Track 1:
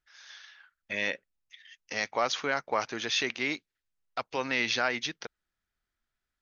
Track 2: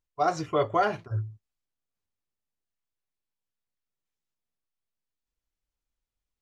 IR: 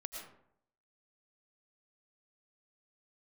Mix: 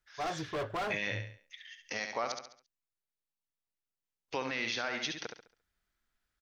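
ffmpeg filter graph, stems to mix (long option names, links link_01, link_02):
-filter_complex "[0:a]volume=1.5dB,asplit=3[link_01][link_02][link_03];[link_01]atrim=end=2.32,asetpts=PTS-STARTPTS,afade=type=out:start_time=2.316:duration=0.004:curve=hsin[link_04];[link_02]atrim=start=2.32:end=4.28,asetpts=PTS-STARTPTS,volume=0[link_05];[link_03]atrim=start=4.28,asetpts=PTS-STARTPTS,afade=type=in:duration=0.004:curve=hsin[link_06];[link_04][link_05][link_06]concat=n=3:v=0:a=1,asplit=2[link_07][link_08];[link_08]volume=-7dB[link_09];[1:a]volume=26.5dB,asoftclip=hard,volume=-26.5dB,volume=-5.5dB[link_10];[link_09]aecho=0:1:69|138|207|276|345:1|0.34|0.116|0.0393|0.0134[link_11];[link_07][link_10][link_11]amix=inputs=3:normalize=0,alimiter=limit=-22.5dB:level=0:latency=1:release=343"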